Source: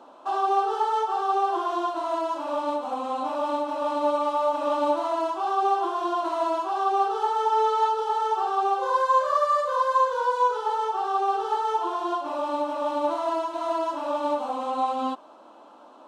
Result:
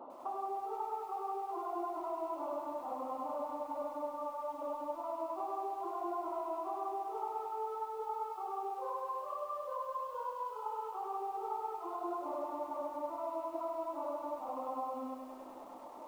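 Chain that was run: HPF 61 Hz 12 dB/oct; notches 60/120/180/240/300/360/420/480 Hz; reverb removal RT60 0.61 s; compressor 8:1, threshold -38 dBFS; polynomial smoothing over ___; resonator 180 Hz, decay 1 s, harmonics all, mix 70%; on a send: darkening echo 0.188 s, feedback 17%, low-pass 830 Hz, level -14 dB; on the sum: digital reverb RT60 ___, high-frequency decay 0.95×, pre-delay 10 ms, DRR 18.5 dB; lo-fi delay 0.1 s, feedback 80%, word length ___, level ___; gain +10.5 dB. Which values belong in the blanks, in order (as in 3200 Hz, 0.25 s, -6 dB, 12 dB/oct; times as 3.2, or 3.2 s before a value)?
65 samples, 1.6 s, 12-bit, -8 dB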